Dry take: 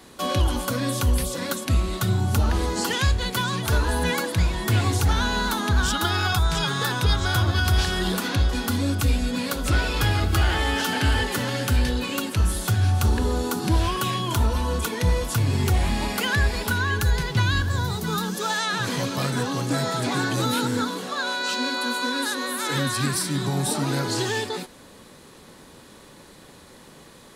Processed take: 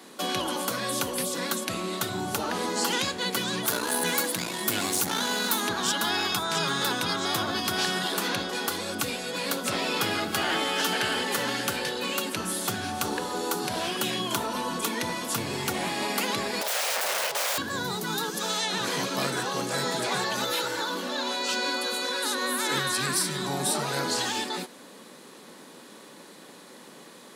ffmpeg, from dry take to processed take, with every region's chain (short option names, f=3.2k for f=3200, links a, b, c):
-filter_complex "[0:a]asettb=1/sr,asplit=3[a][b][c];[a]atrim=end=3.664[d];[b]atrim=start=3.66:end=5.68,asetpts=PTS-STARTPTS,afade=t=in:d=0.004:c=qsin,afade=t=out:st=2.016:d=0.004:c=qsin,aemphasis=mode=production:type=50kf,aeval=exprs='(tanh(7.08*val(0)+0.6)-tanh(0.6))/7.08':c=same[e];[c]atrim=start=5.676[f];[d][e]acrossfade=d=0.004:c1=hsin:c2=qsin[g];[g][f]acrossfade=d=0.004:c1=qsin:c2=hsin,asettb=1/sr,asplit=3[h][i][j];[h]atrim=end=16.614[k];[i]atrim=start=16.61:end=17.58,asetpts=PTS-STARTPTS,afade=t=in:d=0.004:c=qsin,afade=t=out:st=0.966:d=0.004:c=qsin,aeval=exprs='(mod(15.8*val(0)+1,2)-1)/15.8':c=same,lowshelf=f=400:t=q:w=3:g=-11.5[l];[j]atrim=start=17.576[m];[k][l]acrossfade=d=0.004:c1=hsin:c2=qsin[n];[n][m]acrossfade=d=0.004:c1=qsin:c2=hsin,asettb=1/sr,asplit=3[o][p][q];[o]atrim=end=20.244[r];[p]atrim=start=20.24:end=21.31,asetpts=PTS-STARTPTS,afade=t=in:d=0.004:c=qsin,afade=t=out:st=1.066:d=0.004:c=qsin,equalizer=f=8.9k:t=o:w=0.64:g=-7,aecho=1:1:3.4:0.62,atrim=end_sample=47187[s];[q]atrim=start=21.306[t];[r][s]acrossfade=d=0.004:c1=hsin:c2=qsin[u];[u][t]acrossfade=d=0.004:c1=qsin:c2=hsin,highpass=f=190:w=0.5412,highpass=f=190:w=1.3066,afftfilt=real='re*lt(hypot(re,im),0.251)':imag='im*lt(hypot(re,im),0.251)':win_size=1024:overlap=0.75,acontrast=24,volume=-4.5dB"